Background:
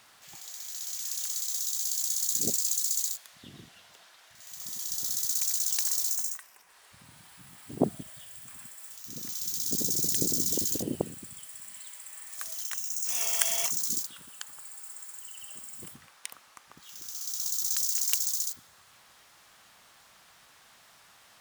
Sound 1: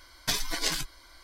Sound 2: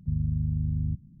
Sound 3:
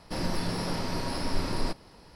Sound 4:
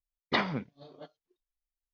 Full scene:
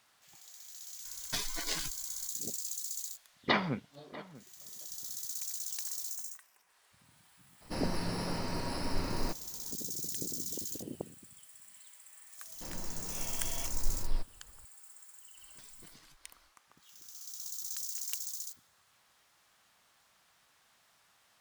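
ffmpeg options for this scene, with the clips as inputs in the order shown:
-filter_complex "[1:a]asplit=2[s0][s1];[3:a]asplit=2[s2][s3];[0:a]volume=0.299[s4];[4:a]asplit=2[s5][s6];[s6]adelay=641.4,volume=0.126,highshelf=f=4000:g=-14.4[s7];[s5][s7]amix=inputs=2:normalize=0[s8];[s2]bandreject=f=3400:w=6.7[s9];[s3]asubboost=boost=12:cutoff=73[s10];[s1]acompressor=threshold=0.00631:ratio=6:attack=3.2:release=140:knee=1:detection=peak[s11];[s0]atrim=end=1.23,asetpts=PTS-STARTPTS,volume=0.422,afade=t=in:d=0.004:c=hsin,afade=t=out:st=1.226:d=0.004:c=hsin,adelay=1050[s12];[s8]atrim=end=1.93,asetpts=PTS-STARTPTS,volume=0.944,afade=t=in:d=0.004:c=hsin,afade=t=out:st=1.926:d=0.004:c=hsin,adelay=3160[s13];[s9]atrim=end=2.15,asetpts=PTS-STARTPTS,volume=0.596,afade=t=in:d=0.02,afade=t=out:st=2.13:d=0.02,adelay=7600[s14];[s10]atrim=end=2.15,asetpts=PTS-STARTPTS,volume=0.188,afade=t=in:d=0.004:c=hsin,afade=t=out:st=2.146:d=0.004:c=hsin,adelay=12500[s15];[s11]atrim=end=1.23,asetpts=PTS-STARTPTS,volume=0.224,afade=t=in:d=0.1,afade=t=out:st=1.13:d=0.1,adelay=15310[s16];[s4][s12][s13][s14][s15][s16]amix=inputs=6:normalize=0"

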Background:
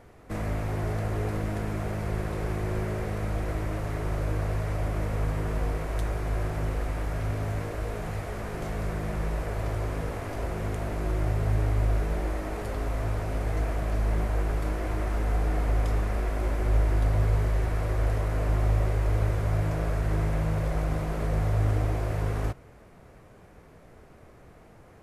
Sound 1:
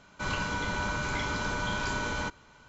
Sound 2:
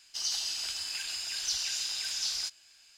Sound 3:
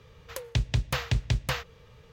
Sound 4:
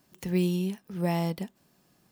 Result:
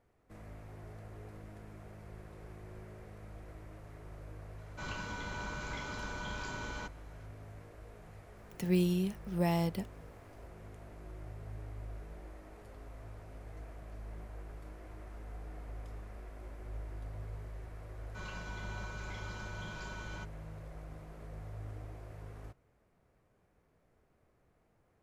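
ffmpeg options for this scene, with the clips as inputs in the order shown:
-filter_complex "[1:a]asplit=2[s0][s1];[0:a]volume=0.1[s2];[4:a]agate=range=0.447:threshold=0.00126:ratio=16:release=100:detection=peak[s3];[s1]aecho=1:1:5.5:0.73[s4];[s0]atrim=end=2.68,asetpts=PTS-STARTPTS,volume=0.316,afade=t=in:d=0.004:c=hsin,afade=t=out:st=2.676:d=0.004:c=hsin,adelay=4580[s5];[s3]atrim=end=2.11,asetpts=PTS-STARTPTS,volume=0.708,afade=t=in:d=0.004:c=hsin,afade=t=out:st=2.106:d=0.004:c=hsin,adelay=8370[s6];[s4]atrim=end=2.68,asetpts=PTS-STARTPTS,volume=0.15,afade=t=in:d=0.004:c=hsin,afade=t=out:st=2.676:d=0.004:c=hsin,adelay=17950[s7];[s2][s5][s6][s7]amix=inputs=4:normalize=0"

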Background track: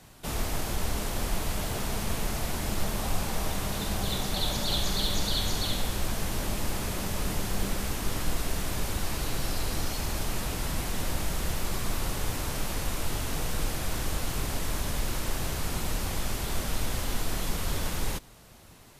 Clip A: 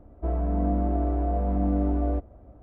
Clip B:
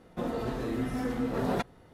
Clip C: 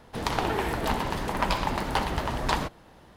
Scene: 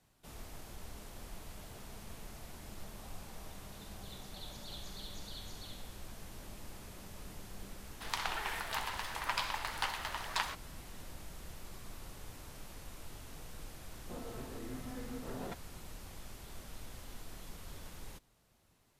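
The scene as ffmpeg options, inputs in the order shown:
-filter_complex "[0:a]volume=0.119[s0];[3:a]highpass=1200,atrim=end=3.16,asetpts=PTS-STARTPTS,volume=0.596,afade=t=in:d=0.004:c=hsin,afade=t=out:st=3.156:d=0.004:c=hsin,adelay=7870[s1];[2:a]atrim=end=1.93,asetpts=PTS-STARTPTS,volume=0.2,afade=t=in:d=0.004:c=hsin,afade=t=out:st=1.926:d=0.004:c=hsin,adelay=13920[s2];[s0][s1][s2]amix=inputs=3:normalize=0"

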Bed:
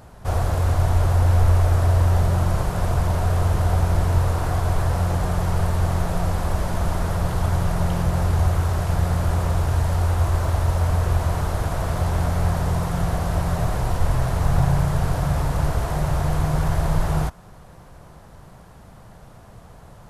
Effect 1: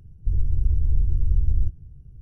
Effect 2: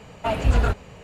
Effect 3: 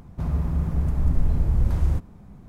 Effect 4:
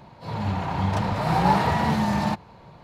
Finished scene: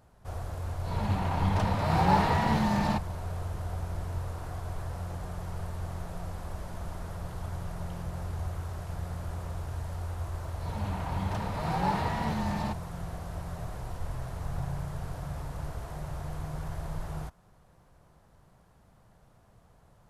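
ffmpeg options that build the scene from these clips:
-filter_complex "[4:a]asplit=2[s0][s1];[0:a]volume=0.168[s2];[s0]atrim=end=2.83,asetpts=PTS-STARTPTS,volume=0.631,afade=t=in:d=0.004:c=hsin,afade=t=out:st=2.826:d=0.004:c=hsin,adelay=630[s3];[s1]atrim=end=2.83,asetpts=PTS-STARTPTS,volume=0.355,afade=t=in:d=0.004:c=hsin,afade=t=out:st=2.826:d=0.004:c=hsin,adelay=10380[s4];[s2][s3][s4]amix=inputs=3:normalize=0"

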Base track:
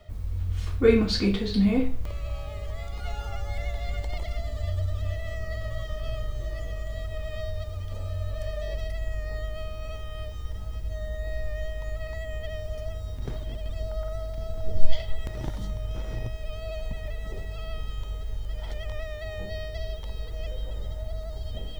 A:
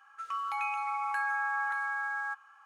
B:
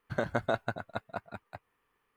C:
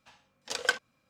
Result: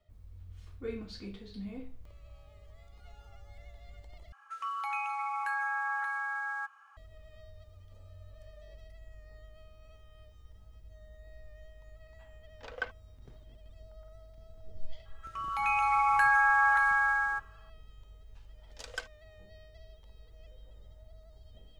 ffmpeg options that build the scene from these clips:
-filter_complex "[1:a]asplit=2[s0][s1];[3:a]asplit=2[s2][s3];[0:a]volume=0.1[s4];[s2]lowpass=2000[s5];[s1]dynaudnorm=f=130:g=9:m=5.31[s6];[s4]asplit=2[s7][s8];[s7]atrim=end=4.324[s9];[s0]atrim=end=2.65,asetpts=PTS-STARTPTS,volume=0.841[s10];[s8]atrim=start=6.966[s11];[s5]atrim=end=1.09,asetpts=PTS-STARTPTS,volume=0.422,afade=t=in:d=0.004:c=hsin,afade=t=out:st=1.086:d=0.004:c=hsin,adelay=12130[s12];[s6]atrim=end=2.65,asetpts=PTS-STARTPTS,volume=0.447,afade=t=in:d=0.004:c=hsin,afade=t=out:st=2.646:d=0.004:c=hsin,adelay=15050[s13];[s3]atrim=end=1.09,asetpts=PTS-STARTPTS,volume=0.237,afade=t=in:d=0.004:c=hsin,afade=t=out:st=1.086:d=0.004:c=hsin,adelay=18290[s14];[s9][s10]acrossfade=d=0.004:c1=hsin:c2=hsin[s15];[s15][s11]acrossfade=d=0.004:c1=hsin:c2=hsin[s16];[s16][s12][s13][s14]amix=inputs=4:normalize=0"

